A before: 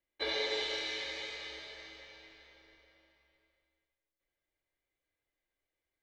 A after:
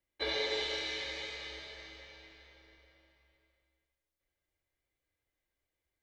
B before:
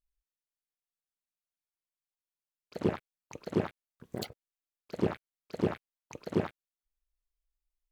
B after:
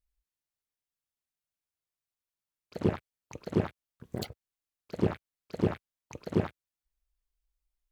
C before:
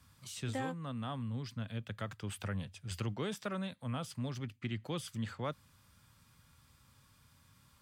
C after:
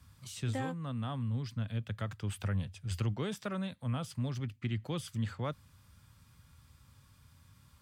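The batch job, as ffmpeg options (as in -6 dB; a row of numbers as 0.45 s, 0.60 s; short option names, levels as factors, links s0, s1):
-af "equalizer=f=70:t=o:w=2.1:g=8"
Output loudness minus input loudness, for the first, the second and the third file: 0.0 LU, +2.0 LU, +3.0 LU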